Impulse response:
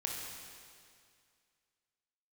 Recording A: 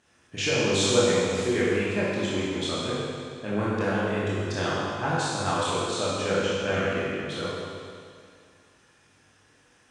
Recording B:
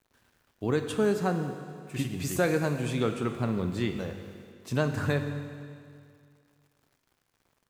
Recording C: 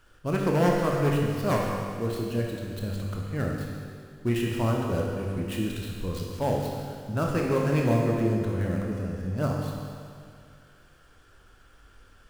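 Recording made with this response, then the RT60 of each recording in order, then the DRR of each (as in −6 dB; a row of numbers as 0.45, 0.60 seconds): C; 2.2, 2.2, 2.2 seconds; −8.5, 6.0, −1.5 decibels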